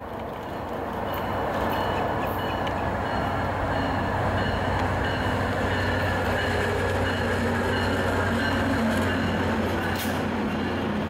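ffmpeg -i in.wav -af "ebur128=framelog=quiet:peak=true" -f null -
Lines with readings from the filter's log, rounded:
Integrated loudness:
  I:         -25.7 LUFS
  Threshold: -35.7 LUFS
Loudness range:
  LRA:         2.6 LU
  Threshold: -45.4 LUFS
  LRA low:   -27.0 LUFS
  LRA high:  -24.5 LUFS
True peak:
  Peak:      -13.2 dBFS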